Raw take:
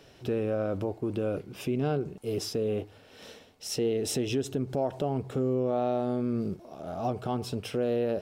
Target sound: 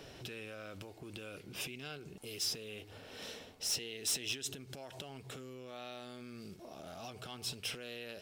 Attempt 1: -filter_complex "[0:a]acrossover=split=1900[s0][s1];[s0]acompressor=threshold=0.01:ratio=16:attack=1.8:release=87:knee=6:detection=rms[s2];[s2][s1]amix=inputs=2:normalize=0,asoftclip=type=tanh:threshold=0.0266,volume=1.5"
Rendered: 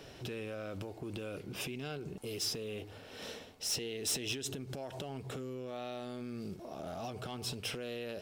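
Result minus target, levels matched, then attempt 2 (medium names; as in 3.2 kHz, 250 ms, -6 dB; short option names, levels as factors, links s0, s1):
compression: peak gain reduction -7.5 dB
-filter_complex "[0:a]acrossover=split=1900[s0][s1];[s0]acompressor=threshold=0.00398:ratio=16:attack=1.8:release=87:knee=6:detection=rms[s2];[s2][s1]amix=inputs=2:normalize=0,asoftclip=type=tanh:threshold=0.0266,volume=1.5"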